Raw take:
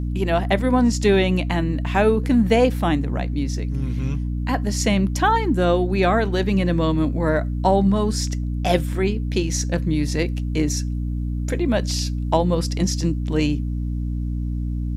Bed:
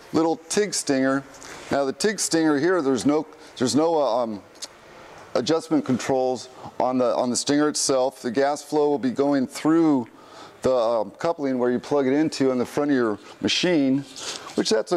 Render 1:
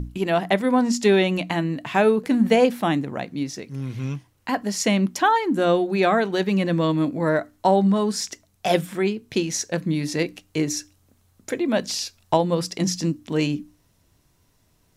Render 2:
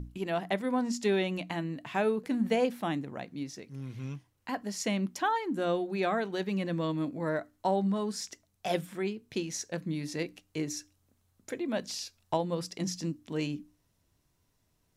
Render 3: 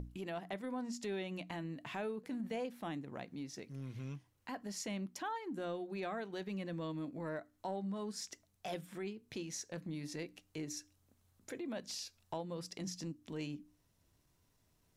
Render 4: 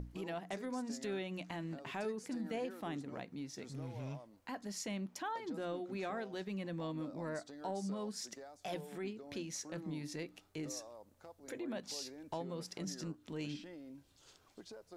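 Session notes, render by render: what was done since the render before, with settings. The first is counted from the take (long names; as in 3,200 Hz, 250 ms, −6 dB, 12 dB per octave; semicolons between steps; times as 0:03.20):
mains-hum notches 60/120/180/240/300 Hz
level −10.5 dB
transient designer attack −6 dB, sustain −2 dB; downward compressor 2.5 to 1, threshold −43 dBFS, peak gain reduction 12.5 dB
mix in bed −31.5 dB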